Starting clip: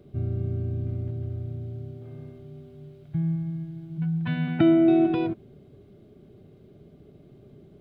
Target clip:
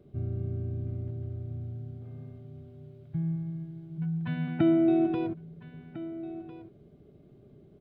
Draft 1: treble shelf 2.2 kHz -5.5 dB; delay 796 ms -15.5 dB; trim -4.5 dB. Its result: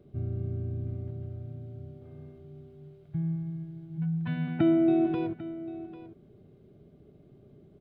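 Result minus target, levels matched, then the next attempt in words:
echo 556 ms early
treble shelf 2.2 kHz -5.5 dB; delay 1352 ms -15.5 dB; trim -4.5 dB

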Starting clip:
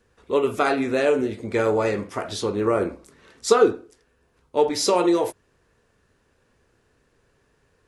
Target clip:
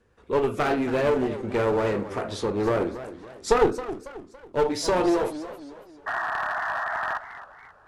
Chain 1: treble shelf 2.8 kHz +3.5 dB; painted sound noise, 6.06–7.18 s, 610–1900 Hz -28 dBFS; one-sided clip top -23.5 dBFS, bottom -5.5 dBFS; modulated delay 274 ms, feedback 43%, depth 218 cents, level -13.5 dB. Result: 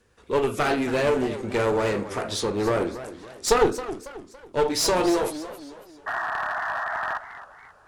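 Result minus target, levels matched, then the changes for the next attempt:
4 kHz band +5.5 dB
change: treble shelf 2.8 kHz -8 dB

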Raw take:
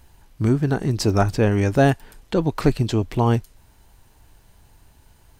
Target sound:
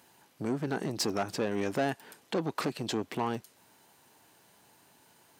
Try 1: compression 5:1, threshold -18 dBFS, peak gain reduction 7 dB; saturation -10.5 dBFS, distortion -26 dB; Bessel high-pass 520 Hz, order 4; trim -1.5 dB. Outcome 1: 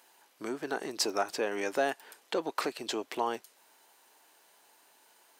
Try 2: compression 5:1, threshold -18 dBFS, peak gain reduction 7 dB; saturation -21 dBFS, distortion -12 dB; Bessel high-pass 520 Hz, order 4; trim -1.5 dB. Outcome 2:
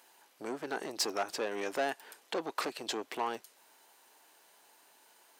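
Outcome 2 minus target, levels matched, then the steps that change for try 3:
250 Hz band -6.5 dB
change: Bessel high-pass 240 Hz, order 4

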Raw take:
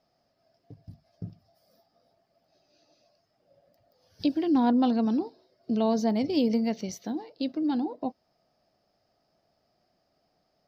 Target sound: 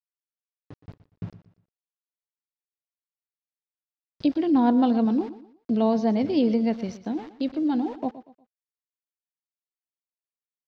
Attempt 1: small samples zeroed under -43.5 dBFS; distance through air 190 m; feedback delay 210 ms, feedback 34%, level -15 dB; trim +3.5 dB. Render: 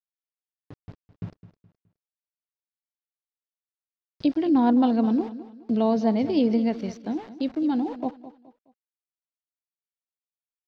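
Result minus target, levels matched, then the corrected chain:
echo 91 ms late
small samples zeroed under -43.5 dBFS; distance through air 190 m; feedback delay 119 ms, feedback 34%, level -15 dB; trim +3.5 dB

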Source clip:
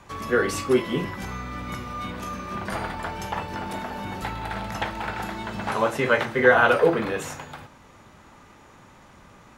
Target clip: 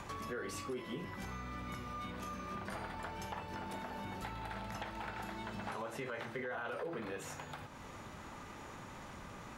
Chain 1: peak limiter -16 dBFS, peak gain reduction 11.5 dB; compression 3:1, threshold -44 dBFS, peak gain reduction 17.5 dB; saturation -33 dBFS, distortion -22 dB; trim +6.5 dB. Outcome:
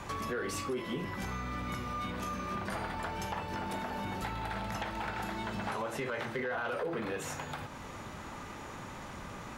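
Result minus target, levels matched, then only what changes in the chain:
compression: peak gain reduction -7 dB
change: compression 3:1, threshold -54.5 dBFS, peak gain reduction 24.5 dB

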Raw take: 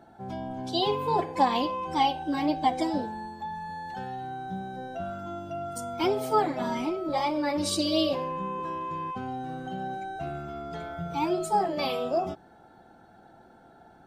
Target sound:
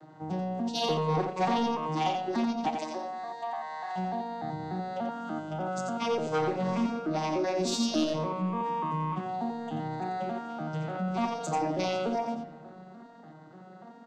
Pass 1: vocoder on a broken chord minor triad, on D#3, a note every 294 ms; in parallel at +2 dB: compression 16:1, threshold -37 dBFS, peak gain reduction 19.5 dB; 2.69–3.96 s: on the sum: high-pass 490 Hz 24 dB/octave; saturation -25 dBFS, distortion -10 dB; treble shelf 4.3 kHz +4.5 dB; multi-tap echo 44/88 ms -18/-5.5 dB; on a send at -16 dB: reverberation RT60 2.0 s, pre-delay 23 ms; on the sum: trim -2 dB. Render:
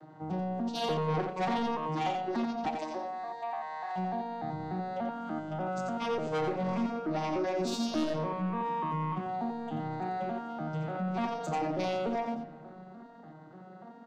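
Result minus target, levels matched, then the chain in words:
8 kHz band -5.5 dB; saturation: distortion +6 dB
vocoder on a broken chord minor triad, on D#3, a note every 294 ms; in parallel at +2 dB: compression 16:1, threshold -37 dBFS, peak gain reduction 19.5 dB; 2.69–3.96 s: on the sum: high-pass 490 Hz 24 dB/octave; saturation -19 dBFS, distortion -16 dB; treble shelf 4.3 kHz +14.5 dB; multi-tap echo 44/88 ms -18/-5.5 dB; on a send at -16 dB: reverberation RT60 2.0 s, pre-delay 23 ms; on the sum: trim -2 dB

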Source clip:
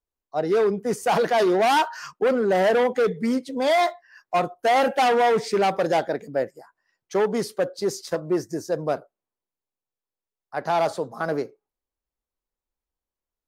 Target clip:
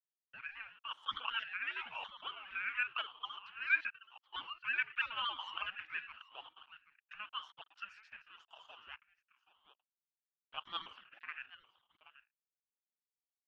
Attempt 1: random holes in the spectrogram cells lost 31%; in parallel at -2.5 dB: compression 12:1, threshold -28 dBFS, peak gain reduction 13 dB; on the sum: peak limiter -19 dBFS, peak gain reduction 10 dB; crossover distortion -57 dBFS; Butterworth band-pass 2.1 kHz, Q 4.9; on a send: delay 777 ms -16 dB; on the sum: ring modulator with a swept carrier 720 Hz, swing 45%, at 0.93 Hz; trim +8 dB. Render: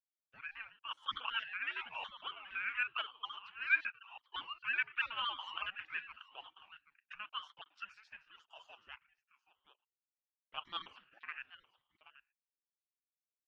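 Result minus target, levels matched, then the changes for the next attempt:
compression: peak gain reduction +9 dB; crossover distortion: distortion -11 dB
change: compression 12:1, threshold -18 dBFS, peak gain reduction 4 dB; change: crossover distortion -45 dBFS

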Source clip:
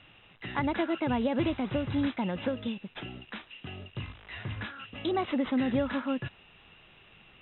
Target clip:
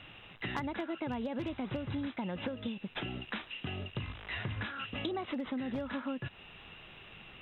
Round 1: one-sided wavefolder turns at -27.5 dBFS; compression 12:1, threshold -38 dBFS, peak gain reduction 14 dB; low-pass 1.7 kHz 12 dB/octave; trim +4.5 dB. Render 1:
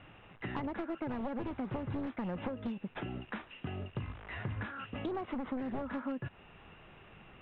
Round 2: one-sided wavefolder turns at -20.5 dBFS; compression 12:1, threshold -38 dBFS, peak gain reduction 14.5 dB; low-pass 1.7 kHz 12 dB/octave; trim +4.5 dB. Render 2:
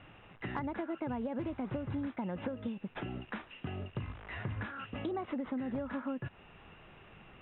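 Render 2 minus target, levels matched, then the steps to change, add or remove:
2 kHz band -3.5 dB
remove: low-pass 1.7 kHz 12 dB/octave

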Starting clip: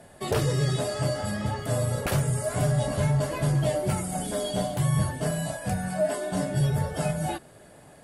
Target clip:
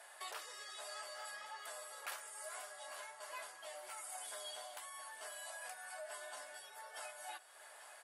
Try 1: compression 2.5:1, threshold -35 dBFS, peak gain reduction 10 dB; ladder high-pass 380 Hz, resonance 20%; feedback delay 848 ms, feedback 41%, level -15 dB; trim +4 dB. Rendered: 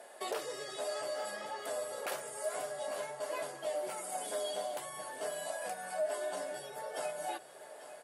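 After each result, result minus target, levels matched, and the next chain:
500 Hz band +7.5 dB; compression: peak gain reduction -5 dB
compression 2.5:1, threshold -35 dBFS, peak gain reduction 10 dB; ladder high-pass 770 Hz, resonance 20%; feedback delay 848 ms, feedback 41%, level -15 dB; trim +4 dB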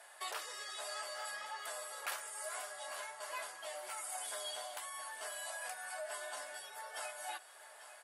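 compression: peak gain reduction -5 dB
compression 2.5:1, threshold -43 dBFS, peak gain reduction 15 dB; ladder high-pass 770 Hz, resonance 20%; feedback delay 848 ms, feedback 41%, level -15 dB; trim +4 dB

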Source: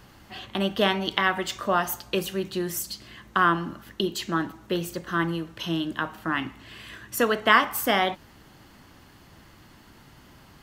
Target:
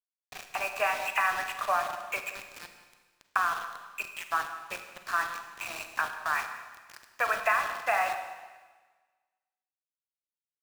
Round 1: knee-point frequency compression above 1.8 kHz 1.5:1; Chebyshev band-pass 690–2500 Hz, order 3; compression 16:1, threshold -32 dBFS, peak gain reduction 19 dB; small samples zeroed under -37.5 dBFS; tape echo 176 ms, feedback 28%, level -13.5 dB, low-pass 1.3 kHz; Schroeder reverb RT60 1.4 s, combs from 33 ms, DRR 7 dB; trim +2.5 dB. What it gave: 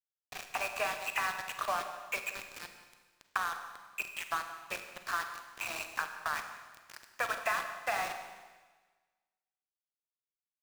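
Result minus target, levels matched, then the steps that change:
compression: peak gain reduction +6.5 dB
change: compression 16:1, threshold -25 dBFS, peak gain reduction 12.5 dB

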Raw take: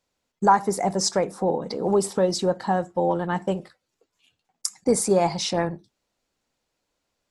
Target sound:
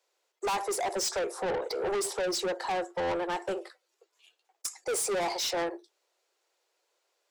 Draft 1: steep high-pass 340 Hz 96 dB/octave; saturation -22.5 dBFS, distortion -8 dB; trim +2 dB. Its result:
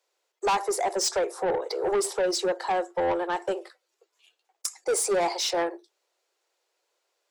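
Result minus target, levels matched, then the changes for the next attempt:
saturation: distortion -4 dB
change: saturation -29.5 dBFS, distortion -4 dB

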